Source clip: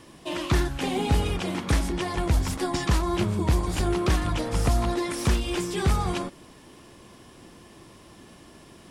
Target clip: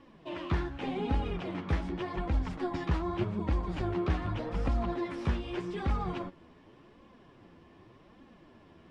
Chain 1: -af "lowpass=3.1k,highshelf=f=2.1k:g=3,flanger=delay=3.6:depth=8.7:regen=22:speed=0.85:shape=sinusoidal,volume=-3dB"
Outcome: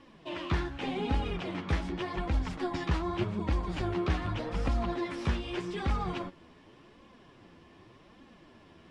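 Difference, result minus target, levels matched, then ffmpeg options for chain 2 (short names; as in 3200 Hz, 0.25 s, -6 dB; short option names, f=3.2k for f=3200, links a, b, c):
4000 Hz band +4.5 dB
-af "lowpass=3.1k,highshelf=f=2.1k:g=-4,flanger=delay=3.6:depth=8.7:regen=22:speed=0.85:shape=sinusoidal,volume=-3dB"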